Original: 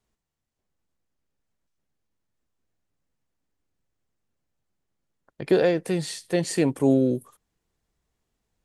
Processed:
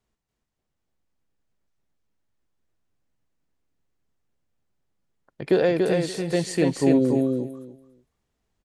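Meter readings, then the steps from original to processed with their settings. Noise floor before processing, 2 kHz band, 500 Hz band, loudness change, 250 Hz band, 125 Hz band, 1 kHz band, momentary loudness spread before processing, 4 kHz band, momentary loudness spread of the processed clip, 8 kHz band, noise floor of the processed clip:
−82 dBFS, +1.5 dB, +1.5 dB, +1.0 dB, +2.0 dB, +1.5 dB, +1.5 dB, 8 LU, +0.5 dB, 13 LU, −1.5 dB, −81 dBFS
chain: high-shelf EQ 7,900 Hz −6.5 dB
on a send: repeating echo 286 ms, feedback 17%, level −3.5 dB

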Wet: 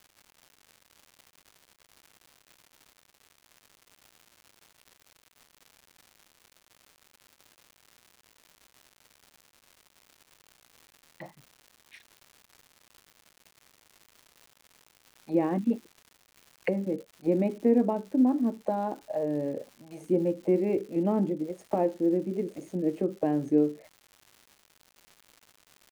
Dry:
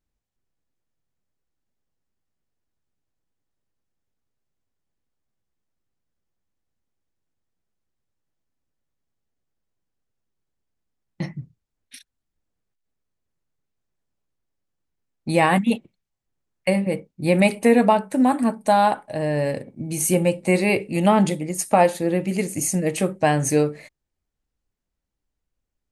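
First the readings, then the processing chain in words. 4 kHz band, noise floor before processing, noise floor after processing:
below −15 dB, −82 dBFS, −68 dBFS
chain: envelope filter 320–2,400 Hz, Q 2.7, down, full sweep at −19.5 dBFS
surface crackle 240 per second −42 dBFS

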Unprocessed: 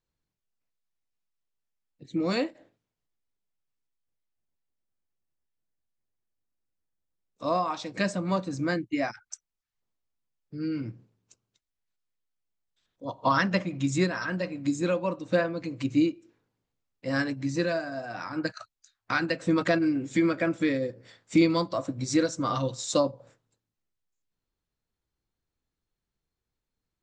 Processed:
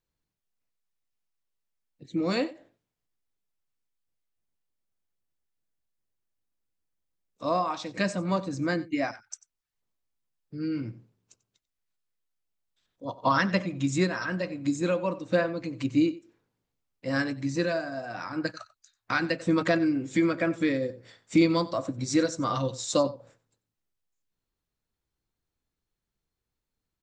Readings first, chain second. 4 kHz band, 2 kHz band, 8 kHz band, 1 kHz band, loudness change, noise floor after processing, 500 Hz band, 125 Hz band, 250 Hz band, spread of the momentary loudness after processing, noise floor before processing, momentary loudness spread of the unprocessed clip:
0.0 dB, 0.0 dB, 0.0 dB, 0.0 dB, 0.0 dB, below −85 dBFS, 0.0 dB, 0.0 dB, 0.0 dB, 11 LU, below −85 dBFS, 11 LU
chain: single-tap delay 92 ms −19 dB

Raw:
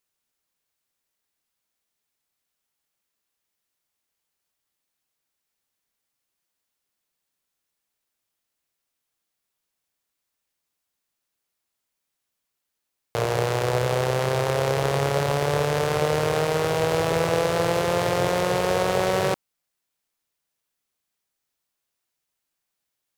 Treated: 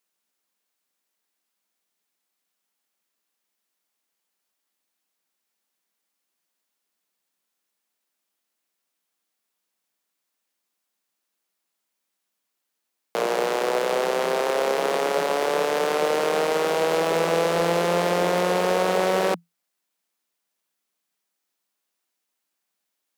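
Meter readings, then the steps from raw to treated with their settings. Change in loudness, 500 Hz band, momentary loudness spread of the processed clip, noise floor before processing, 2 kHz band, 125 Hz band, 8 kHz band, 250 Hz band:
+0.5 dB, +1.0 dB, 2 LU, −82 dBFS, +1.0 dB, −10.5 dB, −0.5 dB, 0.0 dB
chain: Chebyshev high-pass filter 170 Hz, order 8
in parallel at −11 dB: wave folding −19 dBFS

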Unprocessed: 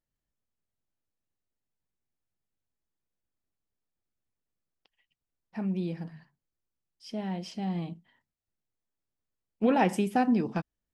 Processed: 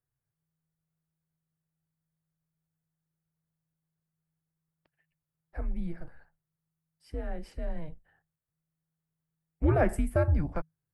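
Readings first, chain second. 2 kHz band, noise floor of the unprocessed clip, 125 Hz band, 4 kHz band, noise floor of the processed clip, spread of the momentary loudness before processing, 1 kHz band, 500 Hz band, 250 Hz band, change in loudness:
−2.0 dB, below −85 dBFS, +5.0 dB, −14.5 dB, below −85 dBFS, 16 LU, −7.0 dB, +0.5 dB, −7.0 dB, −1.5 dB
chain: frequency shifter −160 Hz
flat-topped bell 4,100 Hz −13.5 dB

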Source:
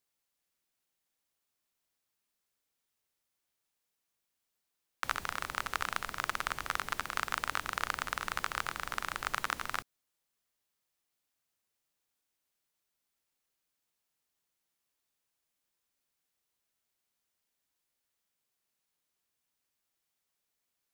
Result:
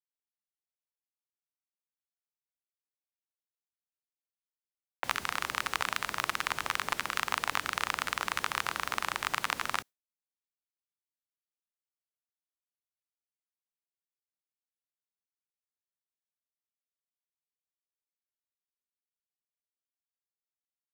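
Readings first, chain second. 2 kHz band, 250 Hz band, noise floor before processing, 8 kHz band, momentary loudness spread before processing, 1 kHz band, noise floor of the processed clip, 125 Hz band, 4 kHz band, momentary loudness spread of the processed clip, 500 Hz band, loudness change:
+3.0 dB, +3.5 dB, −85 dBFS, +4.0 dB, 2 LU, +2.5 dB, below −85 dBFS, +1.0 dB, +5.5 dB, 2 LU, +3.0 dB, +3.5 dB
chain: high-pass filter 150 Hz 6 dB per octave
in parallel at +0.5 dB: brickwall limiter −20 dBFS, peak gain reduction 9 dB
on the sum: downward expander −38 dBFS
highs frequency-modulated by the lows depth 0.52 ms

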